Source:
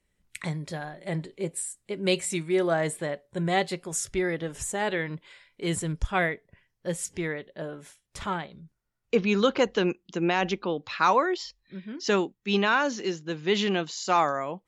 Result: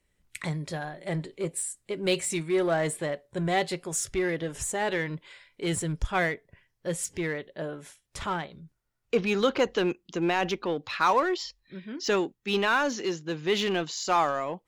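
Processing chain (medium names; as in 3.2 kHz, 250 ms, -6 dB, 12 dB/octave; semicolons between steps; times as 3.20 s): peaking EQ 200 Hz -5 dB 0.29 oct; in parallel at -4.5 dB: overload inside the chain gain 30 dB; on the sum: trim -2.5 dB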